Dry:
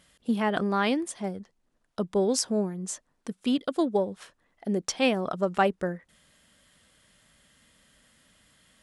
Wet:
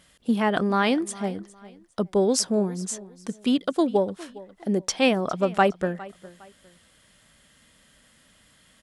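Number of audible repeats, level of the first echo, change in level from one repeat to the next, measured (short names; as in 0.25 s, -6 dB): 2, -19.5 dB, -10.5 dB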